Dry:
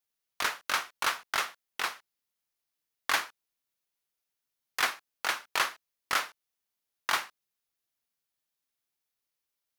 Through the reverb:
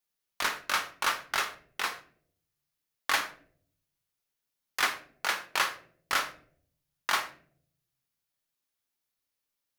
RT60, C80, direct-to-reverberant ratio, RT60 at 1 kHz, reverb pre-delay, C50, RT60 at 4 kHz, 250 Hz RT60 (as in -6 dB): 0.55 s, 17.0 dB, 7.0 dB, 0.40 s, 3 ms, 13.5 dB, 0.35 s, 0.95 s